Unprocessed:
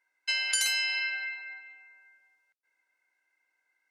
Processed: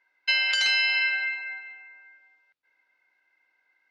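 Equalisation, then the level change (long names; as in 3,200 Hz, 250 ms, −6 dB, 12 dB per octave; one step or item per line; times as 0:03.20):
low-pass filter 4,600 Hz 24 dB per octave
+7.0 dB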